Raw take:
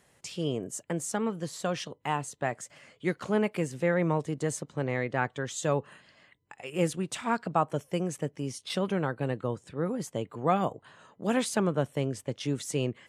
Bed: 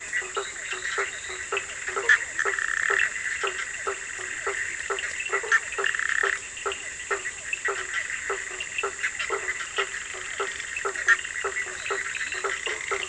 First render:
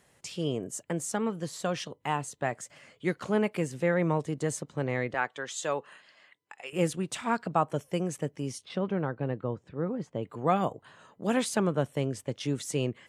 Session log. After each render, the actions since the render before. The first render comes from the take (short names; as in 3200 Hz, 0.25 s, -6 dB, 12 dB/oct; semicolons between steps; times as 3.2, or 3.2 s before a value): 5.14–6.73 weighting filter A; 8.65–10.23 tape spacing loss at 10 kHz 26 dB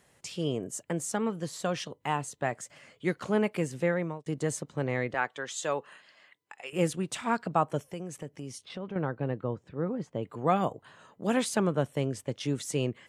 3.84–4.26 fade out linear; 7.89–8.96 compressor 2:1, threshold -40 dBFS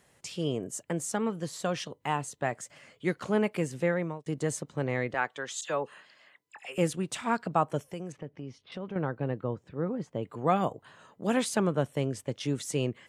5.61–6.78 dispersion lows, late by 52 ms, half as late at 2300 Hz; 8.12–8.72 air absorption 250 m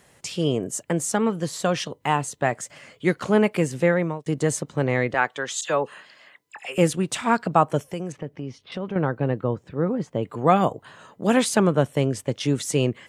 gain +8 dB